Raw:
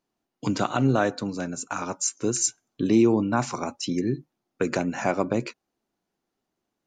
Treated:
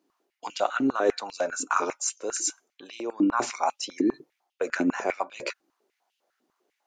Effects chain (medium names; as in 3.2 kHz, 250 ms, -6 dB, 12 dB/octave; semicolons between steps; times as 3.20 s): reverse; compression 6:1, threshold -30 dBFS, peak gain reduction 15 dB; reverse; step-sequenced high-pass 10 Hz 300–2900 Hz; trim +4 dB